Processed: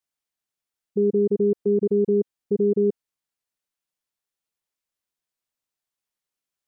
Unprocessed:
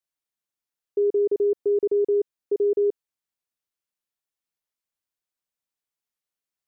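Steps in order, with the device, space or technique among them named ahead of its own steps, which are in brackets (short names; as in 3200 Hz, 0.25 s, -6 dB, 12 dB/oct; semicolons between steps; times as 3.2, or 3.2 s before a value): octave pedal (harmoniser -12 st -5 dB)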